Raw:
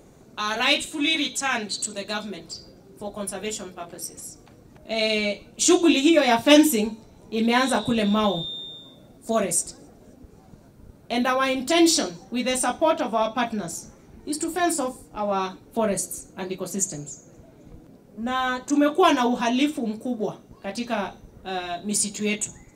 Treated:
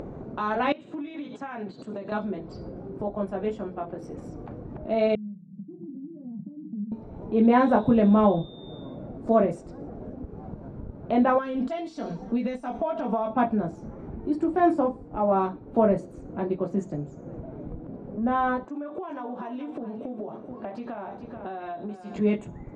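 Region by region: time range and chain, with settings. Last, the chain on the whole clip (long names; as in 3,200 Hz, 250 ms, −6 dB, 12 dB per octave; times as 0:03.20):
0:00.72–0:02.12: Chebyshev band-pass filter 130–7,700 Hz, order 3 + downward compressor 10 to 1, threshold −35 dBFS
0:05.15–0:06.92: downward compressor 10 to 1, threshold −23 dBFS + flat-topped band-pass 180 Hz, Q 4.2
0:11.38–0:13.30: high-shelf EQ 2,900 Hz +12 dB + downward compressor 16 to 1, threshold −27 dBFS + comb filter 4.4 ms, depth 64%
0:18.65–0:22.16: high-pass filter 400 Hz 6 dB per octave + downward compressor 12 to 1, threshold −36 dBFS + single-tap delay 432 ms −12 dB
whole clip: low-pass filter 1,000 Hz 12 dB per octave; upward compression, threshold −32 dBFS; level +3.5 dB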